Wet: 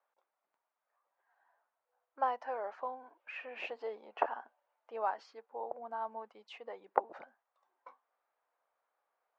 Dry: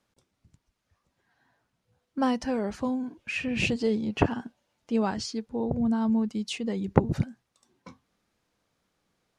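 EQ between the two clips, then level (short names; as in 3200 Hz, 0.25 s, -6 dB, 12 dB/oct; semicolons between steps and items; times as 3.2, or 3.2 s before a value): HPF 660 Hz 24 dB/oct; LPF 1100 Hz 12 dB/oct; +1.0 dB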